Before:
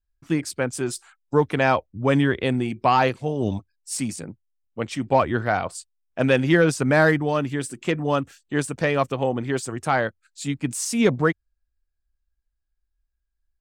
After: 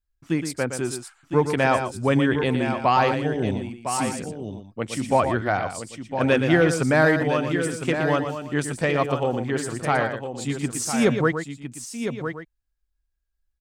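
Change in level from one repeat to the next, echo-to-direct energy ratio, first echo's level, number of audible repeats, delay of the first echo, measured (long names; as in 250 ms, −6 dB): repeats not evenly spaced, −5.0 dB, −8.5 dB, 3, 117 ms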